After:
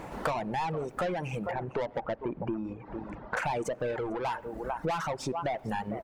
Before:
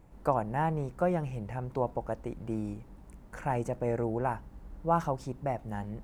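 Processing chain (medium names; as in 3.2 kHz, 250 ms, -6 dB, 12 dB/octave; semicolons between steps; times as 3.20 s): 1.51–3.37 s: tape spacing loss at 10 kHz 35 dB; delay 449 ms -18 dB; overdrive pedal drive 29 dB, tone 3.3 kHz, clips at -12.5 dBFS; on a send at -16 dB: reverberation RT60 0.60 s, pre-delay 77 ms; on the sum: compression 8:1, threshold -32 dBFS, peak gain reduction 14 dB; reverb removal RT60 1.8 s; trim +3.5 dB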